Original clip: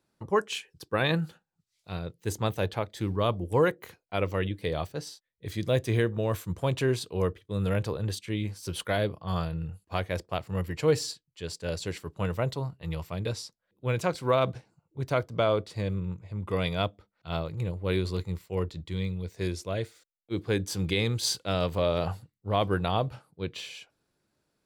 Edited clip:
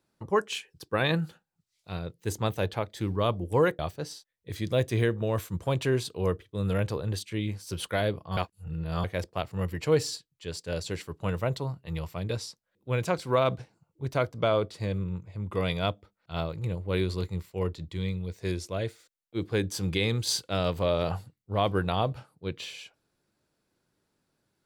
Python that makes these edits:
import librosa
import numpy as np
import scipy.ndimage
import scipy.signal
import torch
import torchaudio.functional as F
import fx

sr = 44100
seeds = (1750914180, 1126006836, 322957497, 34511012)

y = fx.edit(x, sr, fx.cut(start_s=3.79, length_s=0.96),
    fx.reverse_span(start_s=9.33, length_s=0.67), tone=tone)